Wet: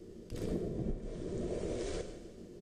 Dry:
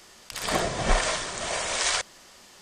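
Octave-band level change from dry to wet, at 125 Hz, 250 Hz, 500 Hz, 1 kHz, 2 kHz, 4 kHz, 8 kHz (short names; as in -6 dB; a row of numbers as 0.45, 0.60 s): -4.0, -1.5, -7.5, -25.5, -27.0, -25.5, -25.5 dB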